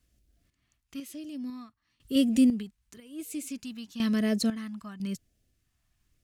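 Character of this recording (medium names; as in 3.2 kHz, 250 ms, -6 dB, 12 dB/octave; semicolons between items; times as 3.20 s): phasing stages 2, 0.98 Hz, lowest notch 480–1000 Hz; random-step tremolo 2 Hz, depth 90%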